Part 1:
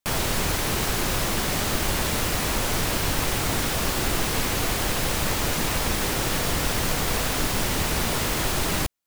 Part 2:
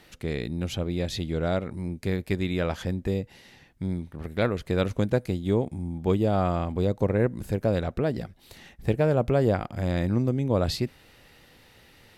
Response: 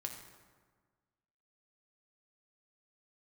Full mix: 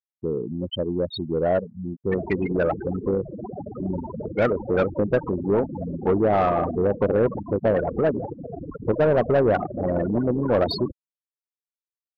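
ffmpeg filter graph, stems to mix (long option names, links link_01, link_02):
-filter_complex "[0:a]adelay=2050,volume=-3.5dB,asplit=2[link_01][link_02];[link_02]volume=-17dB[link_03];[1:a]volume=1dB[link_04];[link_03]aecho=0:1:499:1[link_05];[link_01][link_04][link_05]amix=inputs=3:normalize=0,highpass=frequency=91:poles=1,afftfilt=real='re*gte(hypot(re,im),0.112)':imag='im*gte(hypot(re,im),0.112)':win_size=1024:overlap=0.75,asplit=2[link_06][link_07];[link_07]highpass=frequency=720:poles=1,volume=18dB,asoftclip=type=tanh:threshold=-10dB[link_08];[link_06][link_08]amix=inputs=2:normalize=0,lowpass=frequency=2900:poles=1,volume=-6dB"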